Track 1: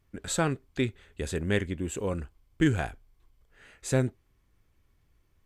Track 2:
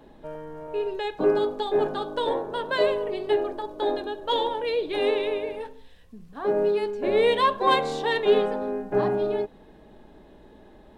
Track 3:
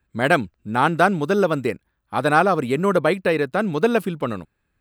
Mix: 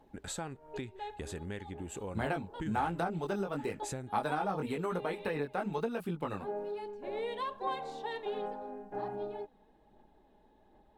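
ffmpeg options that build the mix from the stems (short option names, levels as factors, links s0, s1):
-filter_complex "[0:a]acompressor=threshold=0.0224:ratio=6,volume=0.562,asplit=2[s0][s1];[1:a]volume=0.15[s2];[2:a]flanger=delay=17:depth=3.9:speed=1,acrossover=split=340[s3][s4];[s4]acompressor=threshold=0.0891:ratio=6[s5];[s3][s5]amix=inputs=2:normalize=0,adelay=2000,volume=0.708[s6];[s1]apad=whole_len=484029[s7];[s2][s7]sidechaincompress=threshold=0.00178:ratio=10:attack=16:release=134[s8];[s8][s6]amix=inputs=2:normalize=0,aphaser=in_gain=1:out_gain=1:delay=4.8:decay=0.33:speed=1.3:type=sinusoidal,acompressor=threshold=0.0224:ratio=5,volume=1[s9];[s0][s9]amix=inputs=2:normalize=0,equalizer=f=830:t=o:w=0.33:g=9"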